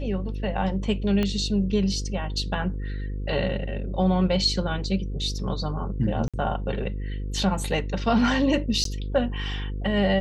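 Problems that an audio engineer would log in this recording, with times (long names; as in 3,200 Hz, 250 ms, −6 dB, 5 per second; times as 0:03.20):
mains buzz 50 Hz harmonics 10 −30 dBFS
0:01.23: click −13 dBFS
0:06.28–0:06.34: drop-out 56 ms
0:08.84–0:08.85: drop-out 13 ms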